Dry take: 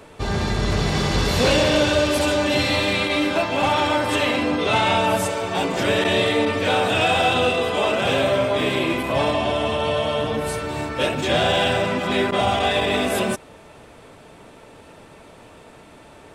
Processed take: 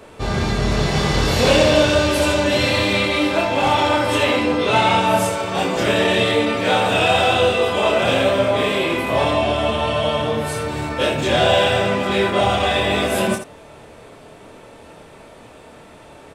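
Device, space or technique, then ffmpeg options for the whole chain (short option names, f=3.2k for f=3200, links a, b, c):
slapback doubling: -filter_complex "[0:a]equalizer=f=560:w=1.5:g=2,asplit=3[a][b][c];[b]adelay=26,volume=-3dB[d];[c]adelay=81,volume=-8dB[e];[a][d][e]amix=inputs=3:normalize=0"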